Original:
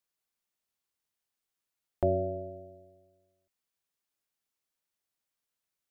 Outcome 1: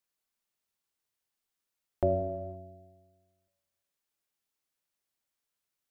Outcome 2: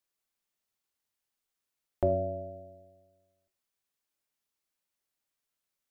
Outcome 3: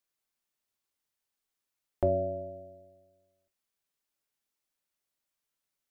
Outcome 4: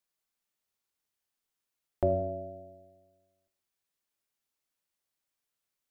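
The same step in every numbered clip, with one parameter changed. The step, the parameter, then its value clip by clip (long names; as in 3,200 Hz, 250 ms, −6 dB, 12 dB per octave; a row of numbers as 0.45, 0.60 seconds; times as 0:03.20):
reverb whose tail is shaped and stops, gate: 540, 160, 90, 290 milliseconds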